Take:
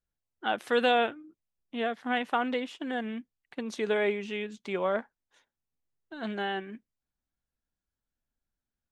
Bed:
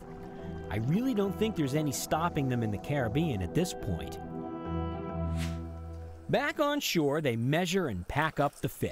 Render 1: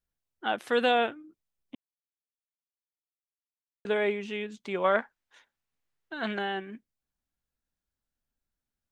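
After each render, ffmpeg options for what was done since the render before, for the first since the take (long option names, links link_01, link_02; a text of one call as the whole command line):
ffmpeg -i in.wav -filter_complex "[0:a]asettb=1/sr,asplit=3[link_01][link_02][link_03];[link_01]atrim=end=4.844[link_04];[link_02]atrim=start=4.84:end=6.39,asetpts=PTS-STARTPTS,afade=type=in:duration=0.004:curve=qsin,afade=type=out:start_time=1.546:duration=0.004:curve=qsin,equalizer=frequency=1900:width_type=o:width=2.8:gain=8.5[link_05];[link_03]atrim=start=6.386[link_06];[link_04][link_05]acrossfade=duration=0.004:curve1=hsin:curve2=qsin[link_07];[link_07][link_06]acrossfade=duration=0.004:curve1=qsin:curve2=hsin,asplit=3[link_08][link_09][link_10];[link_08]atrim=end=1.75,asetpts=PTS-STARTPTS,afade=type=out:start_time=1.746:duration=0.004:curve=hsin[link_11];[link_09]atrim=start=1.75:end=3.85,asetpts=PTS-STARTPTS,volume=0[link_12];[link_10]atrim=start=3.85,asetpts=PTS-STARTPTS,afade=type=in:duration=0.004:curve=hsin[link_13];[link_11][link_12][link_13]concat=n=3:v=0:a=1" out.wav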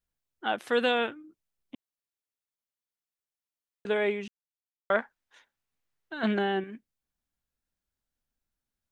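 ffmpeg -i in.wav -filter_complex "[0:a]asettb=1/sr,asplit=3[link_01][link_02][link_03];[link_01]atrim=end=0.834[link_04];[link_02]atrim=start=0.83:end=1.24,asetpts=PTS-STARTPTS,afade=type=in:duration=0.004:curve=qsin,afade=type=out:start_time=0.406:duration=0.004:curve=qsin,equalizer=frequency=690:width_type=o:width=0.33:gain=-7.5[link_05];[link_03]atrim=start=1.236[link_06];[link_04][link_05]acrossfade=duration=0.004:curve1=hsin:curve2=qsin[link_07];[link_07][link_06]acrossfade=duration=0.004:curve1=qsin:curve2=hsin,asettb=1/sr,asplit=3[link_08][link_09][link_10];[link_08]atrim=end=6.234[link_11];[link_09]atrim=start=6.23:end=6.64,asetpts=PTS-STARTPTS,afade=type=in:duration=0.004:curve=qsin,afade=type=out:start_time=0.406:duration=0.004:curve=qsin,equalizer=frequency=270:width_type=o:width=1.8:gain=9[link_12];[link_10]atrim=start=6.636[link_13];[link_11][link_12]acrossfade=duration=0.004:curve1=hsin:curve2=qsin[link_14];[link_14][link_13]acrossfade=duration=0.004:curve1=qsin:curve2=hsin,asplit=3[link_15][link_16][link_17];[link_15]atrim=end=4.28,asetpts=PTS-STARTPTS,afade=type=out:start_time=4.276:duration=0.004:curve=hsin[link_18];[link_16]atrim=start=4.28:end=4.9,asetpts=PTS-STARTPTS,volume=0[link_19];[link_17]atrim=start=4.9,asetpts=PTS-STARTPTS,afade=type=in:duration=0.004:curve=hsin[link_20];[link_18][link_19][link_20]concat=n=3:v=0:a=1" out.wav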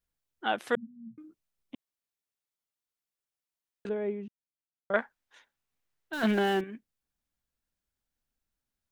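ffmpeg -i in.wav -filter_complex "[0:a]asettb=1/sr,asplit=3[link_01][link_02][link_03];[link_01]atrim=end=0.754[link_04];[link_02]atrim=start=0.75:end=1.18,asetpts=PTS-STARTPTS,afade=type=in:duration=0.004:curve=qsin,afade=type=out:start_time=0.426:duration=0.004:curve=qsin,asuperpass=centerf=160:order=20:qfactor=1.4[link_05];[link_03]atrim=start=1.176[link_06];[link_04][link_05]acrossfade=duration=0.004:curve1=hsin:curve2=qsin[link_07];[link_07][link_06]acrossfade=duration=0.004:curve1=qsin:curve2=hsin,asettb=1/sr,asplit=3[link_08][link_09][link_10];[link_08]atrim=end=3.894[link_11];[link_09]atrim=start=3.89:end=4.94,asetpts=PTS-STARTPTS,afade=type=in:duration=0.004:curve=qsin,afade=type=out:start_time=1.046:duration=0.004:curve=qsin,bandpass=frequency=170:width_type=q:width=0.65[link_12];[link_10]atrim=start=4.936[link_13];[link_11][link_12]acrossfade=duration=0.004:curve1=hsin:curve2=qsin[link_14];[link_14][link_13]acrossfade=duration=0.004:curve1=qsin:curve2=hsin,asettb=1/sr,asplit=3[link_15][link_16][link_17];[link_15]atrim=end=6.134[link_18];[link_16]atrim=start=6.13:end=6.61,asetpts=PTS-STARTPTS,afade=type=in:duration=0.004:curve=qsin,afade=type=out:start_time=0.476:duration=0.004:curve=qsin,aeval=exprs='val(0)+0.5*0.0141*sgn(val(0))':channel_layout=same[link_19];[link_17]atrim=start=6.606[link_20];[link_18][link_19]acrossfade=duration=0.004:curve1=hsin:curve2=qsin[link_21];[link_21][link_20]acrossfade=duration=0.004:curve1=qsin:curve2=hsin" out.wav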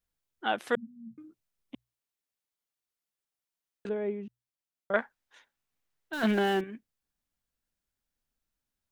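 ffmpeg -i in.wav -af "bandreject=frequency=60:width_type=h:width=6,bandreject=frequency=120:width_type=h:width=6" out.wav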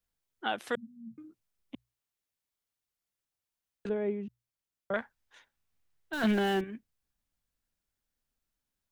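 ffmpeg -i in.wav -filter_complex "[0:a]acrossover=split=130|2700[link_01][link_02][link_03];[link_01]dynaudnorm=framelen=200:gausssize=21:maxgain=9dB[link_04];[link_02]alimiter=limit=-20.5dB:level=0:latency=1:release=334[link_05];[link_04][link_05][link_03]amix=inputs=3:normalize=0" out.wav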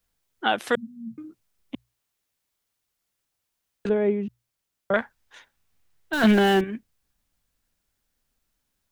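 ffmpeg -i in.wav -af "volume=9.5dB" out.wav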